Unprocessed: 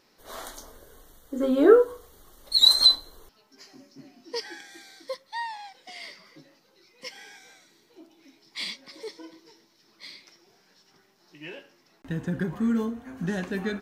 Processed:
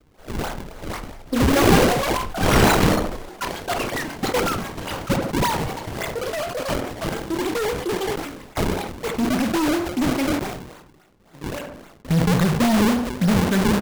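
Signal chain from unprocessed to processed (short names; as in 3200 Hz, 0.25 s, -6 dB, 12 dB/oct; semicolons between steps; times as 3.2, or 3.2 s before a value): G.711 law mismatch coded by A; LPF 5900 Hz 24 dB/oct; comb 1.4 ms, depth 44%; vibrato 2.8 Hz 86 cents; in parallel at -10.5 dB: sine folder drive 20 dB, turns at -6.5 dBFS; on the sum: decimation with a swept rate 40×, swing 160% 3.6 Hz; on a send: tape echo 69 ms, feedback 39%, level -9 dB, low-pass 1400 Hz; on the sum: echoes that change speed 0.625 s, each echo +6 st, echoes 3; sustainer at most 54 dB/s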